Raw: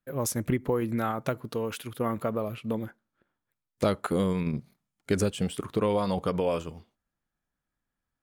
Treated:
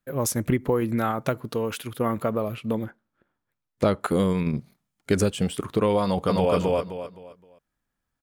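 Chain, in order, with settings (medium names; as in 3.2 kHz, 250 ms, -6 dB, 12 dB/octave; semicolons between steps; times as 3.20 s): 2.84–4.01 s: treble shelf 4.1 kHz -9 dB; 6.03–6.54 s: echo throw 260 ms, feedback 30%, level -0.5 dB; trim +4 dB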